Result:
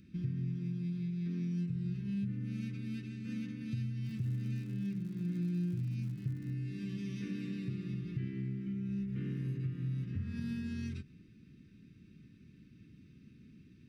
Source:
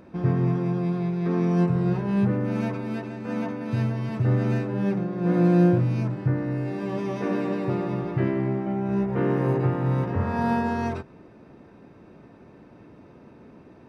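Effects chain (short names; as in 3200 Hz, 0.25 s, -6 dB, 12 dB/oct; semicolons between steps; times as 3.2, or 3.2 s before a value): Chebyshev band-stop 190–2900 Hz, order 2; compressor 3:1, threshold -32 dBFS, peak gain reduction 11 dB; 4.03–6.52 crackle 140/s -45 dBFS; gain -4 dB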